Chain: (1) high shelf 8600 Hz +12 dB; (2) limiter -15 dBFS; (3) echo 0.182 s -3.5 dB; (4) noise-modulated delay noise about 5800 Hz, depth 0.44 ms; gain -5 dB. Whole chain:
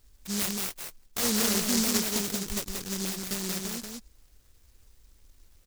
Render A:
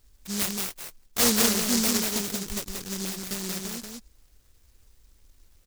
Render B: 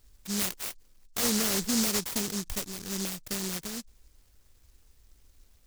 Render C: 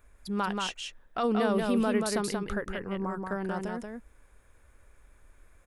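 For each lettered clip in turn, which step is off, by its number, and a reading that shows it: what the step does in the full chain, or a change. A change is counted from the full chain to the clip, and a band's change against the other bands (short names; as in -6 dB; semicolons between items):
2, crest factor change +2.5 dB; 3, crest factor change -2.5 dB; 4, 8 kHz band -15.5 dB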